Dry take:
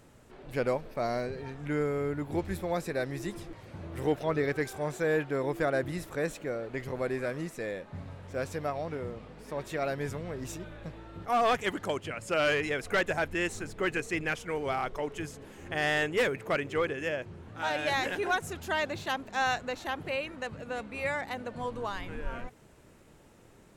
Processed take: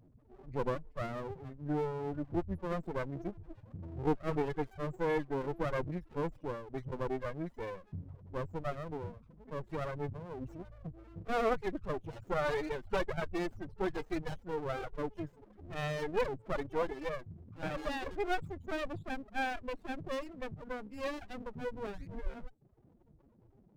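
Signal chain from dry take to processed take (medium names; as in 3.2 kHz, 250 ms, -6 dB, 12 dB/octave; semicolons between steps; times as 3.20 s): reverb removal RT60 0.81 s; loudest bins only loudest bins 8; sliding maximum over 33 samples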